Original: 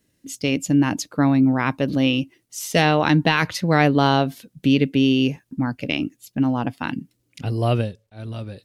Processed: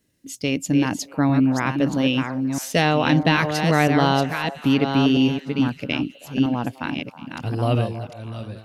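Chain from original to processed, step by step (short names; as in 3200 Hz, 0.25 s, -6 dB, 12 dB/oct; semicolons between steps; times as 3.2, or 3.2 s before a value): reverse delay 0.646 s, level -6 dB; delay with a stepping band-pass 0.32 s, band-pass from 750 Hz, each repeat 0.7 oct, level -12 dB; gain -1.5 dB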